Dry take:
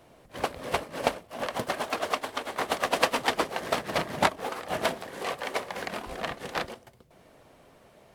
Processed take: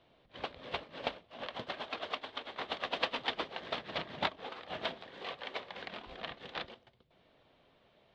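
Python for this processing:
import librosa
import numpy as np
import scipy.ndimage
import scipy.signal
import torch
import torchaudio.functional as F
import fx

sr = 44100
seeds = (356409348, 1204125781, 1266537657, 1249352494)

y = fx.ladder_lowpass(x, sr, hz=4100.0, resonance_pct=55)
y = y * librosa.db_to_amplitude(-1.5)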